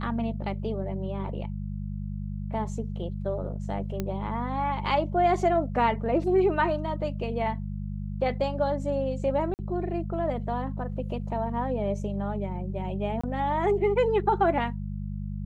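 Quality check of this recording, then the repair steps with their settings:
mains hum 50 Hz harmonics 4 −33 dBFS
0:04.00: click −16 dBFS
0:09.54–0:09.59: drop-out 49 ms
0:13.21–0:13.23: drop-out 25 ms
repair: click removal
hum removal 50 Hz, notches 4
repair the gap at 0:09.54, 49 ms
repair the gap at 0:13.21, 25 ms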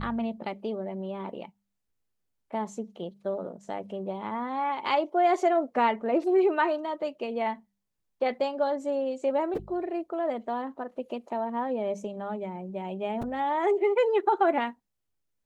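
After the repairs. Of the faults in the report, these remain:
none of them is left

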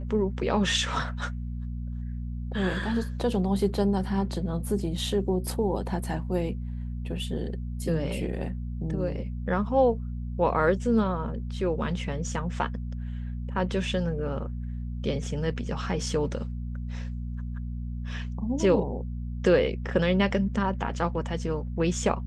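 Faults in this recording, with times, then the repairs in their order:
mains hum 60 Hz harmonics 4 −33 dBFS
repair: hum removal 60 Hz, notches 4

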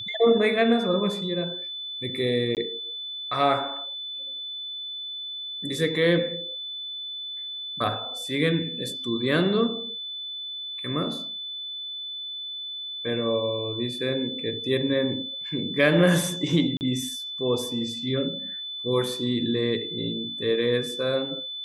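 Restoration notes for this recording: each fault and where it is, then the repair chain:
whistle 3,500 Hz −32 dBFS
0:02.55–0:02.57: drop-out 18 ms
0:16.77–0:16.81: drop-out 39 ms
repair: notch filter 3,500 Hz, Q 30
repair the gap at 0:02.55, 18 ms
repair the gap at 0:16.77, 39 ms

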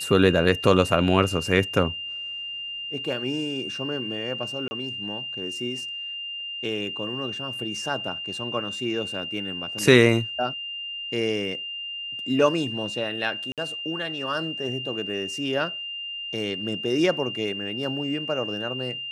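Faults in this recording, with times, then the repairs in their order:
whistle 2,800 Hz −31 dBFS
0:04.68–0:04.71: drop-out 30 ms
0:13.52–0:13.58: drop-out 57 ms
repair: notch filter 2,800 Hz, Q 30
repair the gap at 0:04.68, 30 ms
repair the gap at 0:13.52, 57 ms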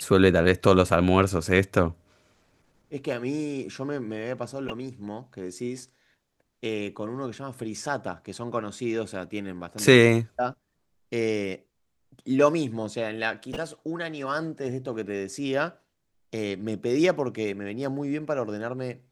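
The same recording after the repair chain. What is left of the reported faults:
none of them is left

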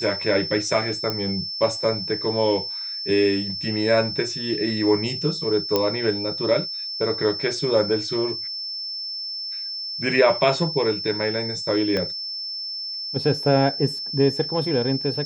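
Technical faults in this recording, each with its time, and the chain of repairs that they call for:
whistle 5,300 Hz −28 dBFS
0:01.10: click −12 dBFS
0:05.76: click −6 dBFS
0:11.97: click −13 dBFS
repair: click removal
notch filter 5,300 Hz, Q 30

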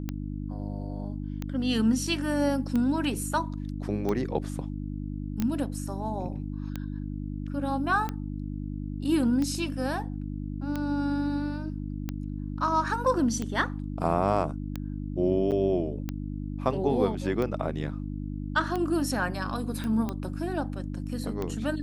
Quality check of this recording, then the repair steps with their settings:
mains hum 50 Hz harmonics 6 −34 dBFS
scratch tick 45 rpm −18 dBFS
0:05.40: click −16 dBFS
0:15.51–0:15.52: drop-out 8.4 ms
0:19.84: click −21 dBFS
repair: click removal
hum removal 50 Hz, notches 6
repair the gap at 0:15.51, 8.4 ms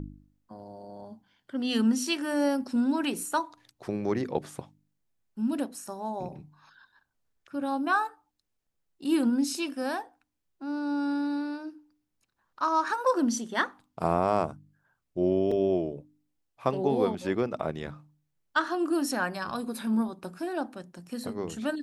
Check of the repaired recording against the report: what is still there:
none of them is left

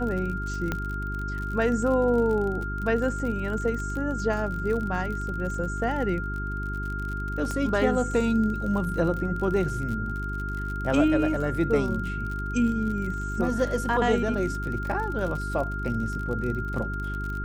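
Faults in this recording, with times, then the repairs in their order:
surface crackle 48 per second −32 dBFS
mains hum 50 Hz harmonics 8 −32 dBFS
whistle 1,400 Hz −33 dBFS
0:00.72: click −14 dBFS
0:07.51: click −18 dBFS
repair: click removal
notch filter 1,400 Hz, Q 30
hum removal 50 Hz, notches 8

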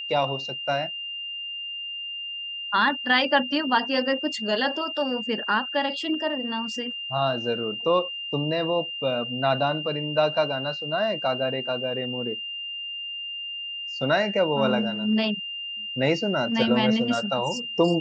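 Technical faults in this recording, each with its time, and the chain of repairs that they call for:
whistle 2,800 Hz −31 dBFS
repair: notch filter 2,800 Hz, Q 30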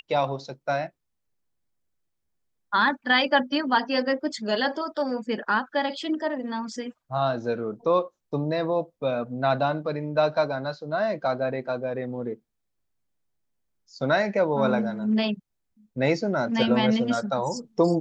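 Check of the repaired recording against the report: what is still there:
none of them is left

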